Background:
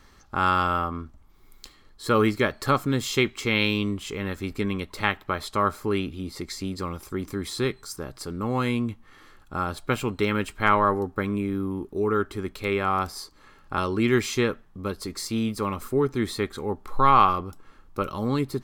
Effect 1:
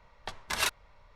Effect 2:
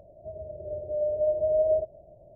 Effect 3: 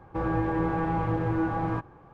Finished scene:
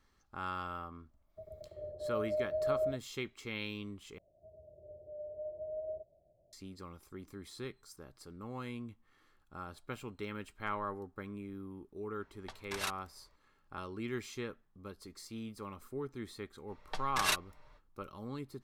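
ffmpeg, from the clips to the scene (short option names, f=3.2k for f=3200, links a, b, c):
-filter_complex "[2:a]asplit=2[a][b];[1:a]asplit=2[c][d];[0:a]volume=-17.5dB[e];[a]agate=range=-25dB:threshold=-41dB:ratio=16:release=100:detection=peak[f];[d]aecho=1:1:6.6:0.46[g];[e]asplit=2[h][i];[h]atrim=end=4.184[j];[b]atrim=end=2.35,asetpts=PTS-STARTPTS,volume=-17.5dB[k];[i]atrim=start=6.526[l];[f]atrim=end=2.35,asetpts=PTS-STARTPTS,volume=-9.5dB,afade=t=in:d=0.004:c=hsin,afade=t=out:st=2.346:d=0.004:c=hsin,adelay=1110[m];[c]atrim=end=1.15,asetpts=PTS-STARTPTS,volume=-9.5dB,afade=t=in:d=0.004:c=hsin,afade=t=out:st=1.146:d=0.004:c=hsin,adelay=12210[n];[g]atrim=end=1.15,asetpts=PTS-STARTPTS,volume=-3dB,afade=t=in:d=0.05,afade=t=out:st=1.1:d=0.05,adelay=16660[o];[j][k]acrossfade=d=0.004:c1=hsin:c2=hsin[p];[p][l]acrossfade=d=0.004:c1=hsin:c2=hsin[q];[q][m][n][o]amix=inputs=4:normalize=0"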